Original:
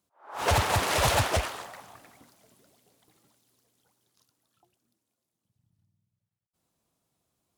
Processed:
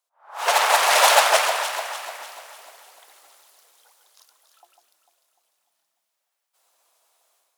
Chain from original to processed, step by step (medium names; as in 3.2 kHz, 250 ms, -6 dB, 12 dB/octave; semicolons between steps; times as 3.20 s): high-pass 600 Hz 24 dB/octave; level rider gain up to 15 dB; on a send: echo whose repeats swap between lows and highs 149 ms, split 2.4 kHz, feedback 69%, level -6 dB; on the sum: trim -1 dB